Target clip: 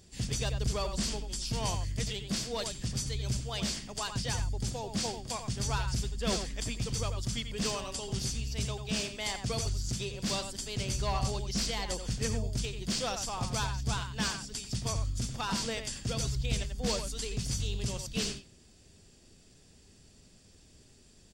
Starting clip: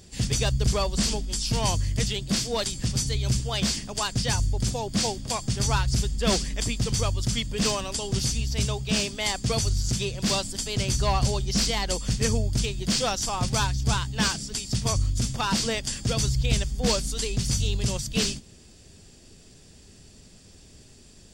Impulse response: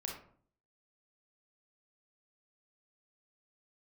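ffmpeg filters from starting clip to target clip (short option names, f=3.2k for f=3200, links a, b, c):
-filter_complex "[0:a]asplit=2[a][b];[b]adelay=90,highpass=300,lowpass=3.4k,asoftclip=type=hard:threshold=-19dB,volume=-7dB[c];[a][c]amix=inputs=2:normalize=0,volume=-8dB"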